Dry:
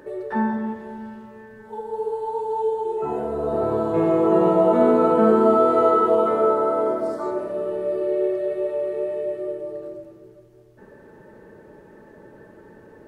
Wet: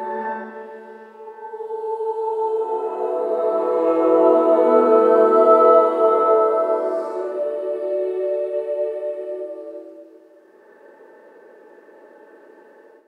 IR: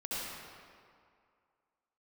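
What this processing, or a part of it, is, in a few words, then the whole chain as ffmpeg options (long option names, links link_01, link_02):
ghost voice: -filter_complex "[0:a]areverse[link_01];[1:a]atrim=start_sample=2205[link_02];[link_01][link_02]afir=irnorm=-1:irlink=0,areverse,highpass=frequency=330:width=0.5412,highpass=frequency=330:width=1.3066,volume=-2.5dB"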